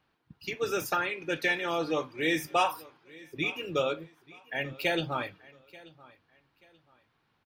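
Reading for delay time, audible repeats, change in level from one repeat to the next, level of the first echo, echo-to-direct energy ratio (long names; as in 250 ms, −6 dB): 884 ms, 2, −11.0 dB, −22.0 dB, −21.5 dB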